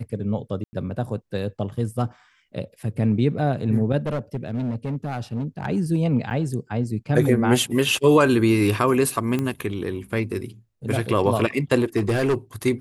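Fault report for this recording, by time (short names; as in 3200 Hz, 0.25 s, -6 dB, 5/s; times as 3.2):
0.64–0.73 gap 90 ms
4.06–5.66 clipped -21.5 dBFS
6.3–6.31 gap 8.5 ms
9.39 pop -13 dBFS
11.96–12.35 clipped -16.5 dBFS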